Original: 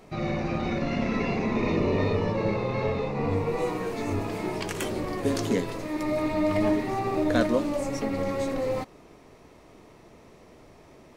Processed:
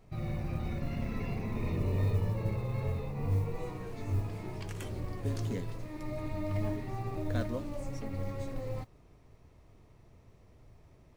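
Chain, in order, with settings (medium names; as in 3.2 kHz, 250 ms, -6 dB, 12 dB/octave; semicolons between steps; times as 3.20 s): FFT filter 110 Hz 0 dB, 200 Hz -12 dB, 310 Hz -15 dB; modulation noise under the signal 33 dB; trim +1.5 dB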